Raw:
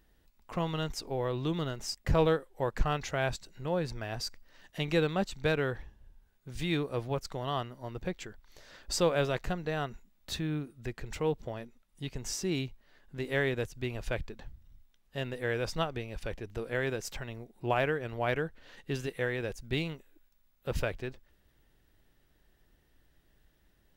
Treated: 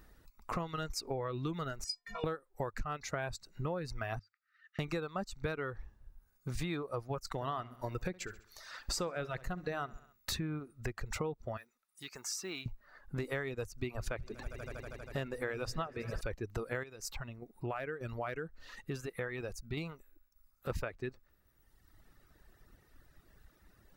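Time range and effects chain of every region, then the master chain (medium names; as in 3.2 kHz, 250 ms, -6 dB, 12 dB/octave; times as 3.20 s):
1.84–2.24 s: low-pass 8.8 kHz + tilt shelf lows -7 dB, about 800 Hz + inharmonic resonator 210 Hz, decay 0.49 s, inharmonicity 0.03
4.19–4.79 s: compression 16:1, threshold -46 dBFS + brick-wall FIR high-pass 1.2 kHz + tape spacing loss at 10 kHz 36 dB
7.26–10.34 s: gate -51 dBFS, range -8 dB + feedback delay 67 ms, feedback 42%, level -12 dB + tape noise reduction on one side only encoder only
11.57–12.66 s: block-companded coder 7-bit + high-pass 1.3 kHz 6 dB/octave + compression 1.5:1, threshold -53 dBFS
13.70–16.21 s: hum notches 60/120/180 Hz + echo with a slow build-up 80 ms, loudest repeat 5, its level -18 dB
16.83–20.70 s: compression 1.5:1, threshold -50 dBFS + tremolo saw down 1.7 Hz, depth 35%
whole clip: reverb removal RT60 1.3 s; graphic EQ with 31 bands 100 Hz +4 dB, 1.25 kHz +8 dB, 3.15 kHz -8 dB; compression 10:1, threshold -41 dBFS; trim +7 dB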